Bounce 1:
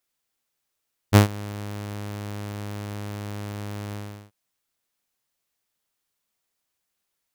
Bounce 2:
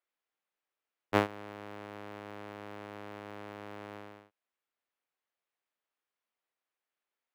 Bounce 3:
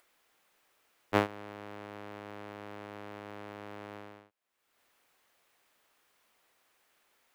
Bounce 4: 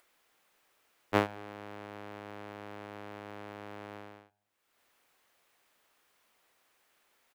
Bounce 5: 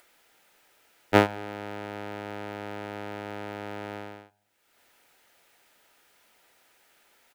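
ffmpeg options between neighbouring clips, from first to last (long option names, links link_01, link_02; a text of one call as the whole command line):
ffmpeg -i in.wav -filter_complex "[0:a]acrossover=split=280 3100:gain=0.126 1 0.141[link_01][link_02][link_03];[link_01][link_02][link_03]amix=inputs=3:normalize=0,volume=-5dB" out.wav
ffmpeg -i in.wav -af "acompressor=mode=upward:threshold=-54dB:ratio=2.5" out.wav
ffmpeg -i in.wav -filter_complex "[0:a]asplit=2[link_01][link_02];[link_02]adelay=108,lowpass=frequency=1300:poles=1,volume=-23dB,asplit=2[link_03][link_04];[link_04]adelay=108,lowpass=frequency=1300:poles=1,volume=0.49,asplit=2[link_05][link_06];[link_06]adelay=108,lowpass=frequency=1300:poles=1,volume=0.49[link_07];[link_01][link_03][link_05][link_07]amix=inputs=4:normalize=0" out.wav
ffmpeg -i in.wav -af "asuperstop=centerf=1100:order=12:qfactor=7.2,volume=8.5dB" out.wav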